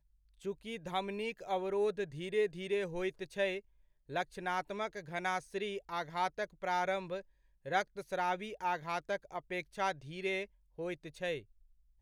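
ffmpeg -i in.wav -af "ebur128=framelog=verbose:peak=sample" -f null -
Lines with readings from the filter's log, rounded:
Integrated loudness:
  I:         -37.5 LUFS
  Threshold: -47.7 LUFS
Loudness range:
  LRA:         2.0 LU
  Threshold: -57.5 LUFS
  LRA low:   -38.6 LUFS
  LRA high:  -36.6 LUFS
Sample peak:
  Peak:      -19.2 dBFS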